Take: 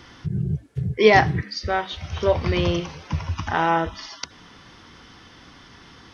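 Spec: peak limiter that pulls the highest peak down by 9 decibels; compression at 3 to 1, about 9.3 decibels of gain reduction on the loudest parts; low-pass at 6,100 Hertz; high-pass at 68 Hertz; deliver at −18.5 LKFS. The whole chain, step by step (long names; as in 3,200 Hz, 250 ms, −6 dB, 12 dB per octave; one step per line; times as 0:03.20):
high-pass filter 68 Hz
low-pass filter 6,100 Hz
downward compressor 3 to 1, threshold −22 dBFS
level +12 dB
brickwall limiter −7.5 dBFS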